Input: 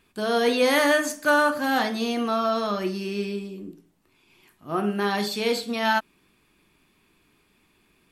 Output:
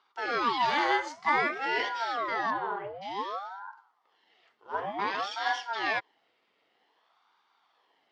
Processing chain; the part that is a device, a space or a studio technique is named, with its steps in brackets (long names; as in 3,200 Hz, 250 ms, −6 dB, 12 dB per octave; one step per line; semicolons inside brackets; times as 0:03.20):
0:02.50–0:03.01: low-pass filter 2,800 Hz → 1,700 Hz 24 dB per octave
voice changer toy (ring modulator whose carrier an LFO sweeps 720 Hz, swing 70%, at 0.54 Hz; loudspeaker in its box 480–4,500 Hz, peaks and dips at 570 Hz −9 dB, 1,500 Hz −6 dB, 2,500 Hz −8 dB, 3,900 Hz −5 dB)
level +1 dB